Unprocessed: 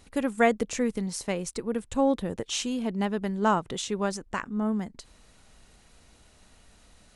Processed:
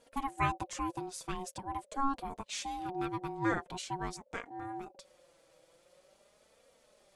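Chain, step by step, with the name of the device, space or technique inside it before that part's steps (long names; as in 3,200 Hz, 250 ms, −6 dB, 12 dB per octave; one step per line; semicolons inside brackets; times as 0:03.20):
alien voice (ring modulation 550 Hz; flanger 0.45 Hz, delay 4.2 ms, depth 2.1 ms, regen +21%)
level −2.5 dB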